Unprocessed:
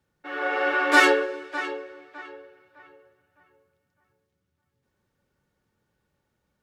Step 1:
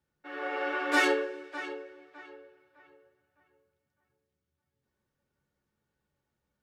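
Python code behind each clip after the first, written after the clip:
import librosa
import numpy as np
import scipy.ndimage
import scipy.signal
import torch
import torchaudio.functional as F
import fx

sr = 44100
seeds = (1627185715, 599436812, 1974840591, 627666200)

y = fx.room_early_taps(x, sr, ms=(14, 68), db=(-7.5, -17.5))
y = y * 10.0 ** (-8.0 / 20.0)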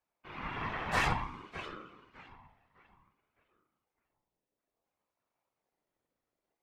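y = fx.whisperise(x, sr, seeds[0])
y = fx.ring_lfo(y, sr, carrier_hz=600.0, swing_pct=35, hz=0.57)
y = y * 10.0 ** (-2.5 / 20.0)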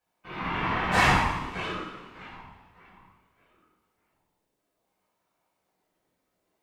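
y = fx.rev_double_slope(x, sr, seeds[1], early_s=0.79, late_s=2.4, knee_db=-18, drr_db=-6.5)
y = y * 10.0 ** (2.5 / 20.0)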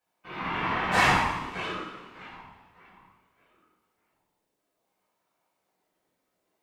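y = fx.low_shelf(x, sr, hz=120.0, db=-8.5)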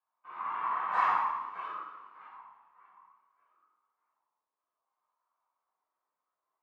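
y = fx.bandpass_q(x, sr, hz=1100.0, q=5.3)
y = y * 10.0 ** (2.0 / 20.0)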